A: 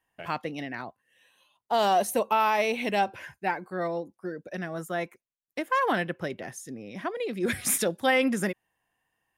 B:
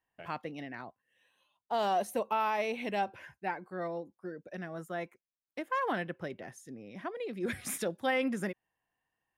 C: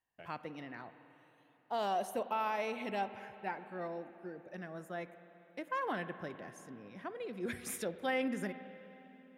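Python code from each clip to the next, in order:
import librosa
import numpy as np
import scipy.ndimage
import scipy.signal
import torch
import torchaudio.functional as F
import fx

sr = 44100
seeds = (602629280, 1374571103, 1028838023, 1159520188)

y1 = fx.high_shelf(x, sr, hz=4000.0, db=-6.5)
y1 = y1 * 10.0 ** (-6.5 / 20.0)
y2 = fx.rev_spring(y1, sr, rt60_s=3.5, pass_ms=(46, 50), chirp_ms=25, drr_db=11.5)
y2 = y2 * 10.0 ** (-4.5 / 20.0)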